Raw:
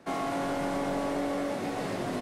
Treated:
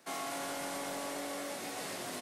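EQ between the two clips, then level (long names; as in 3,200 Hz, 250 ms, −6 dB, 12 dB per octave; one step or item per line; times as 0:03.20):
spectral tilt +3 dB per octave
high-shelf EQ 5,200 Hz +5 dB
−7.0 dB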